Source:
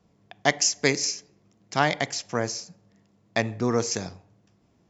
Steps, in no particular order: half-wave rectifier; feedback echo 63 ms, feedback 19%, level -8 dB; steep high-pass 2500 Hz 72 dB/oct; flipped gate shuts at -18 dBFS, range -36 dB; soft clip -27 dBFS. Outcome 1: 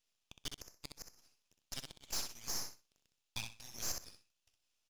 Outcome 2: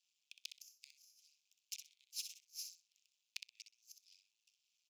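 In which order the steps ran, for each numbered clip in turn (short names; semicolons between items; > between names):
steep high-pass > flipped gate > half-wave rectifier > feedback echo > soft clip; flipped gate > feedback echo > half-wave rectifier > steep high-pass > soft clip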